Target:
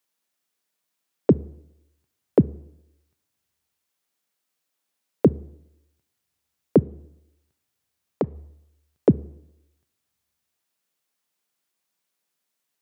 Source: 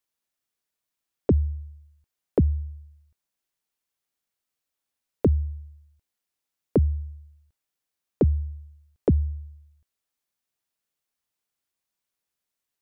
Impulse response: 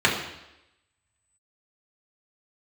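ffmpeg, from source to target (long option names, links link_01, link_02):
-filter_complex "[0:a]highpass=frequency=130:width=0.5412,highpass=frequency=130:width=1.3066,asplit=3[link_01][link_02][link_03];[link_01]afade=type=out:start_time=6.81:duration=0.02[link_04];[link_02]acompressor=threshold=-27dB:ratio=6,afade=type=in:start_time=6.81:duration=0.02,afade=type=out:start_time=8.34:duration=0.02[link_05];[link_03]afade=type=in:start_time=8.34:duration=0.02[link_06];[link_04][link_05][link_06]amix=inputs=3:normalize=0,asplit=2[link_07][link_08];[1:a]atrim=start_sample=2205,adelay=30[link_09];[link_08][link_09]afir=irnorm=-1:irlink=0,volume=-40.5dB[link_10];[link_07][link_10]amix=inputs=2:normalize=0,volume=5.5dB"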